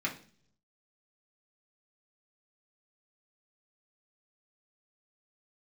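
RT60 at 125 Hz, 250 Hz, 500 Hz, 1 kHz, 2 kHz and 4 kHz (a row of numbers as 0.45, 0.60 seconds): 1.0, 0.75, 0.55, 0.40, 0.45, 0.55 seconds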